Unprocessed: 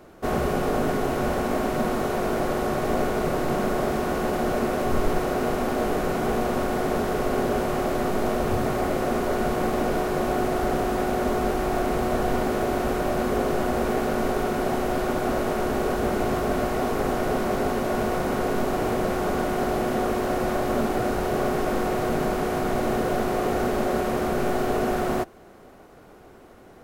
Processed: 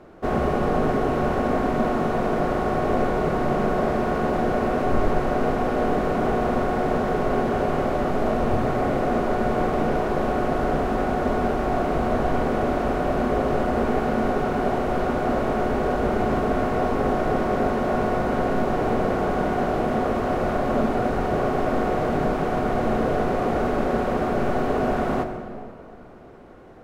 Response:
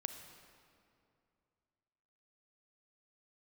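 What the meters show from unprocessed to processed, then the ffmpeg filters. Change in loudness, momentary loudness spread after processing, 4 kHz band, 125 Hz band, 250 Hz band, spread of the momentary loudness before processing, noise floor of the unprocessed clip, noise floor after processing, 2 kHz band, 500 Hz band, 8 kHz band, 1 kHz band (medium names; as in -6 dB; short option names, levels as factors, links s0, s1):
+2.0 dB, 1 LU, -3.5 dB, +3.0 dB, +2.0 dB, 1 LU, -48 dBFS, -41 dBFS, +0.5 dB, +1.5 dB, no reading, +2.5 dB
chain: -filter_complex "[0:a]aemphasis=mode=reproduction:type=75kf[s0];[1:a]atrim=start_sample=2205[s1];[s0][s1]afir=irnorm=-1:irlink=0,volume=1.58"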